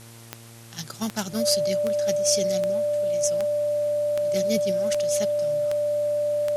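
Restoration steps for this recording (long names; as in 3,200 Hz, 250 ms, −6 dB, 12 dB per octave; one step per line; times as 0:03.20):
click removal
hum removal 115.2 Hz, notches 22
notch filter 590 Hz, Q 30
broadband denoise 27 dB, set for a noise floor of −45 dBFS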